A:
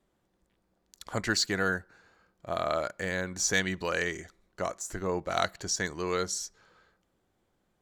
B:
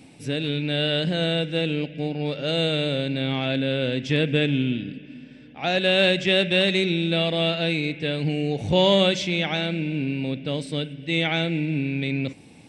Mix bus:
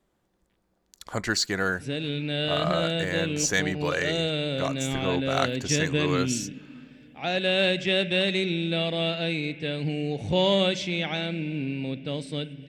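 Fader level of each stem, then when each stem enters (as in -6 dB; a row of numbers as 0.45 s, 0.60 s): +2.0 dB, -4.0 dB; 0.00 s, 1.60 s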